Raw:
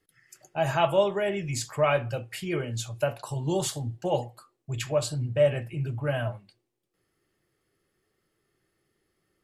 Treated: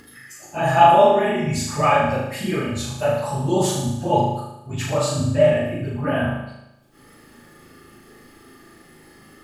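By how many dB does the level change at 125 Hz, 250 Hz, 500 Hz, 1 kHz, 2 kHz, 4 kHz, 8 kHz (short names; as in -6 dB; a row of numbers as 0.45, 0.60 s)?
+6.0, +10.5, +7.0, +14.0, +7.5, +6.0, +6.0 dB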